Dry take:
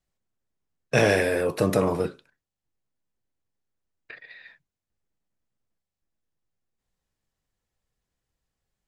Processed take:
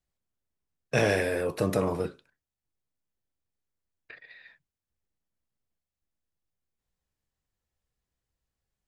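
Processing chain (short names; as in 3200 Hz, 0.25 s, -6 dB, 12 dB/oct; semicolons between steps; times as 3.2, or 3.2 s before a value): bell 68 Hz +5.5 dB 0.7 oct; gain -4.5 dB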